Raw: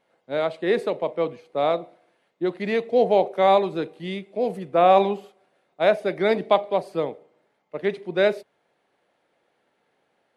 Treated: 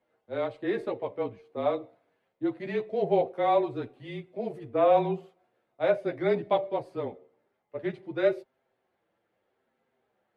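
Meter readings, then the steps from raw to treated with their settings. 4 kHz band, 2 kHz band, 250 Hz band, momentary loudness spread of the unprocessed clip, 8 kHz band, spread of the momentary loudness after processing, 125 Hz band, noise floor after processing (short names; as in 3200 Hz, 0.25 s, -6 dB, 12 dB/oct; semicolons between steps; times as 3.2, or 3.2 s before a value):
-11.5 dB, -8.5 dB, -4.5 dB, 12 LU, n/a, 12 LU, -3.0 dB, -78 dBFS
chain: high shelf 3100 Hz -10 dB; chorus voices 6, 0.2 Hz, delay 11 ms, depth 3.7 ms; frequency shift -28 Hz; gain -3 dB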